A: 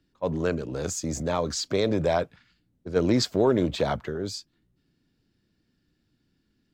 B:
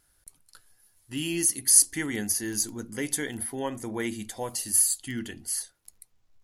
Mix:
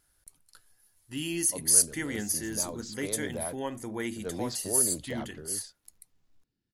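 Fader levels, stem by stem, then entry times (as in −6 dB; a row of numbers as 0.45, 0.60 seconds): −13.5, −3.0 decibels; 1.30, 0.00 seconds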